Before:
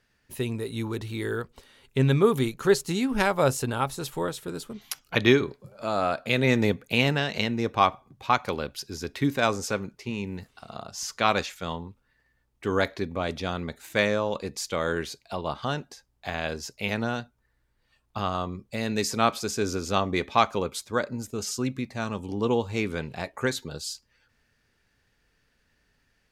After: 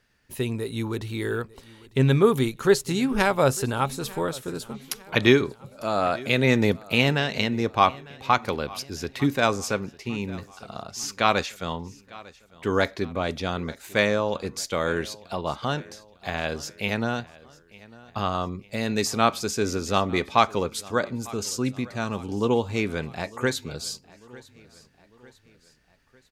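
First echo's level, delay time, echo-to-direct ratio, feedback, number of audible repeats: −21.5 dB, 900 ms, −20.5 dB, 49%, 3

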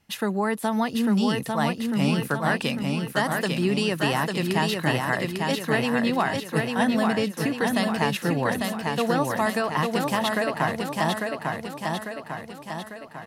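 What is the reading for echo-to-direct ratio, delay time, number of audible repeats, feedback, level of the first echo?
−2.0 dB, 848 ms, 6, 54%, −3.5 dB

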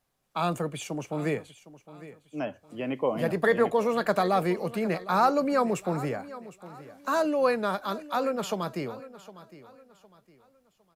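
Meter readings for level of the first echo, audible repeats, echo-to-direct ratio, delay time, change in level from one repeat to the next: −17.0 dB, 2, −16.5 dB, 759 ms, −9.5 dB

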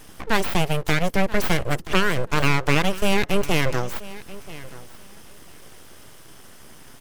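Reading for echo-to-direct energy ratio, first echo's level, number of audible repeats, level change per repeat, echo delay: −18.0 dB, −18.0 dB, 2, −16.0 dB, 982 ms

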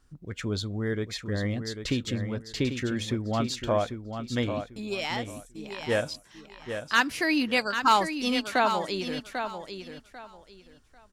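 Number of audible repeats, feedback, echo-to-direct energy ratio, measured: 3, 23%, −8.0 dB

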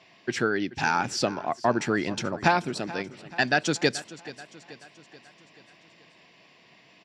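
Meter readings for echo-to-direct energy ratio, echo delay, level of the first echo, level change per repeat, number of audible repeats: −16.0 dB, 432 ms, −17.5 dB, −5.5 dB, 4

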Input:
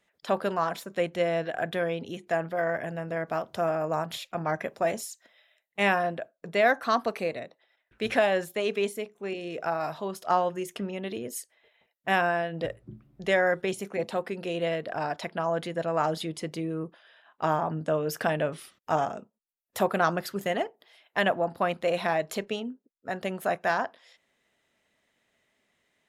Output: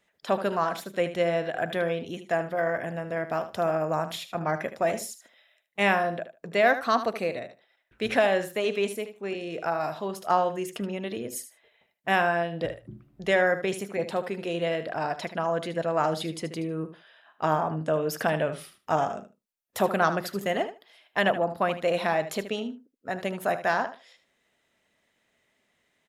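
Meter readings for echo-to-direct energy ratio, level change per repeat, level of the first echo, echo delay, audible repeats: −12.0 dB, −16.0 dB, −12.0 dB, 76 ms, 2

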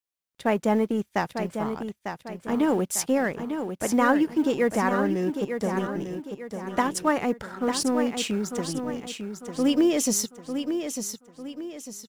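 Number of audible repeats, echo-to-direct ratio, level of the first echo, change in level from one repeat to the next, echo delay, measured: 4, −6.5 dB, −7.5 dB, −8.0 dB, 899 ms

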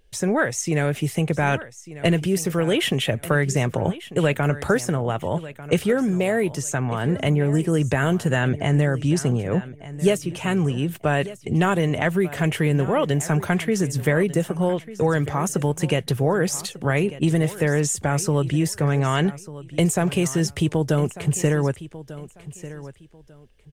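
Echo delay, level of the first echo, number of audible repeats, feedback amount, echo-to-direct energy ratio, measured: 1,195 ms, −16.0 dB, 2, 24%, −16.0 dB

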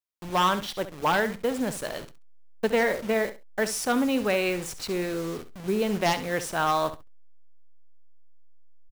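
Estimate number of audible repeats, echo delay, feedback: 2, 67 ms, 17%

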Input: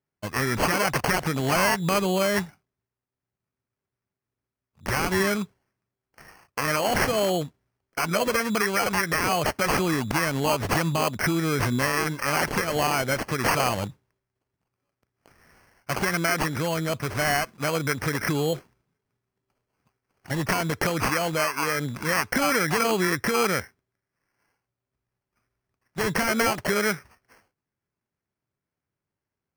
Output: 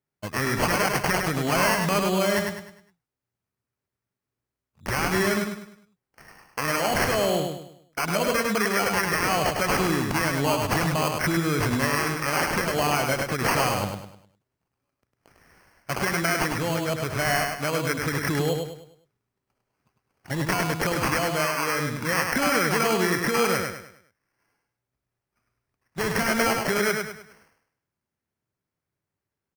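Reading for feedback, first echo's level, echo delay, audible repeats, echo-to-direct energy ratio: 38%, −4.5 dB, 102 ms, 4, −4.0 dB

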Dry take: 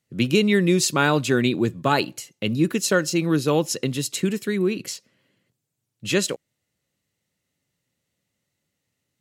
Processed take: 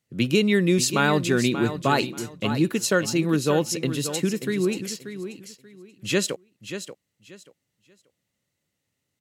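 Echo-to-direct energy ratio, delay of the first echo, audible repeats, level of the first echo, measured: −10.5 dB, 584 ms, 2, −10.5 dB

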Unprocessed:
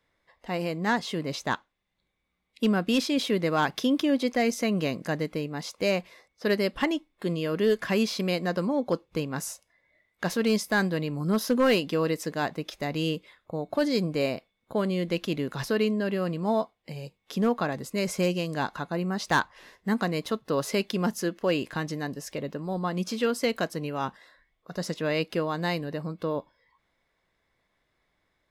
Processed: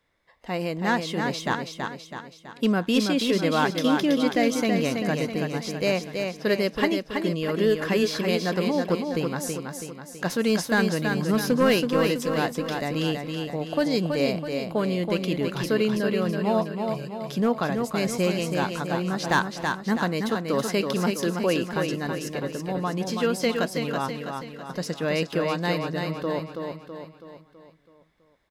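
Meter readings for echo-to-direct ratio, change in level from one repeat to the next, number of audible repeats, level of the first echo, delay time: −4.0 dB, −6.0 dB, 5, −5.0 dB, 327 ms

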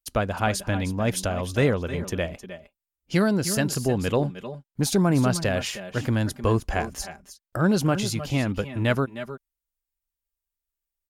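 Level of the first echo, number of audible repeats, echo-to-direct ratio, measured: −14.5 dB, 1, −11.5 dB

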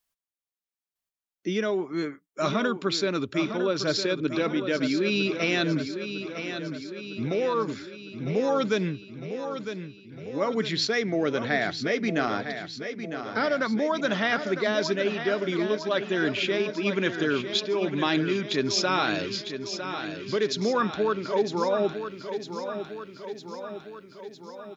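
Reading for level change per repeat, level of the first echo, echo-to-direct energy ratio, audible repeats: −4.5 dB, −9.0 dB, −7.0 dB, 6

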